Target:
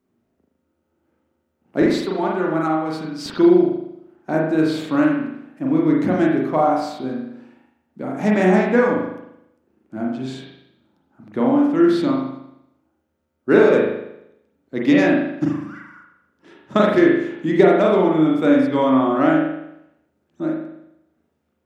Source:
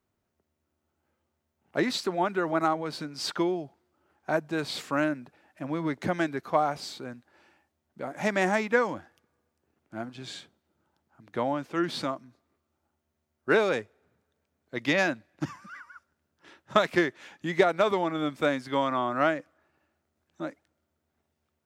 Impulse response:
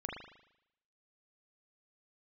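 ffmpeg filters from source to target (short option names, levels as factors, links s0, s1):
-filter_complex "[0:a]asetnsamples=n=441:p=0,asendcmd='1.82 equalizer g 5.5;3.26 equalizer g 13.5',equalizer=f=260:w=0.87:g=14[s0];[1:a]atrim=start_sample=2205[s1];[s0][s1]afir=irnorm=-1:irlink=0,volume=1.33"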